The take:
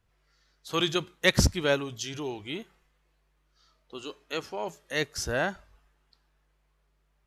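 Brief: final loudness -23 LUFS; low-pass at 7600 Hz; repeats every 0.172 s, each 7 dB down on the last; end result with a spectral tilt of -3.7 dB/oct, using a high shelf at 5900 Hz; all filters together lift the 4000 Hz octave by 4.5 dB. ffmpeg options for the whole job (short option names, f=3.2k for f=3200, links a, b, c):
-af "lowpass=7.6k,equalizer=f=4k:t=o:g=8.5,highshelf=f=5.9k:g=-8,aecho=1:1:172|344|516|688|860:0.447|0.201|0.0905|0.0407|0.0183,volume=4dB"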